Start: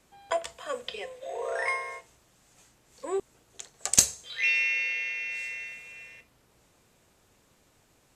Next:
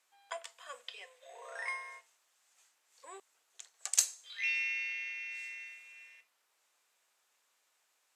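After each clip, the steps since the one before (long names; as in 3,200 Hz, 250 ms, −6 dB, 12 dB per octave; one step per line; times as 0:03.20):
high-pass filter 1,000 Hz 12 dB per octave
level −8 dB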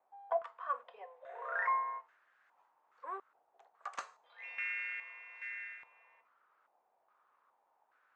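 low-pass on a step sequencer 2.4 Hz 780–1,600 Hz
level +2 dB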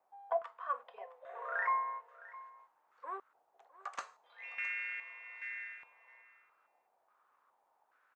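single-tap delay 662 ms −18.5 dB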